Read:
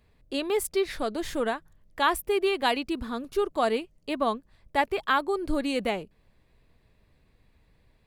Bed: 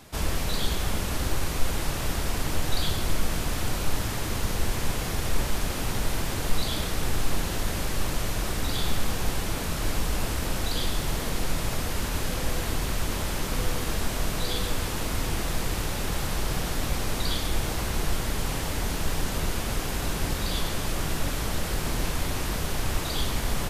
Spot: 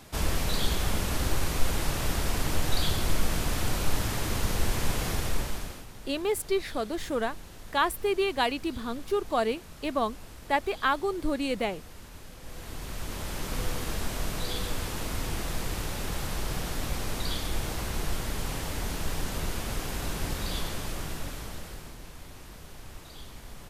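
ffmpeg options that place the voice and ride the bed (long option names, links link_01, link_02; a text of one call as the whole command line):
ffmpeg -i stem1.wav -i stem2.wav -filter_complex "[0:a]adelay=5750,volume=-1.5dB[link_01];[1:a]volume=13.5dB,afade=type=out:start_time=5.1:duration=0.76:silence=0.133352,afade=type=in:start_time=12.4:duration=1.18:silence=0.199526,afade=type=out:start_time=20.55:duration=1.42:silence=0.211349[link_02];[link_01][link_02]amix=inputs=2:normalize=0" out.wav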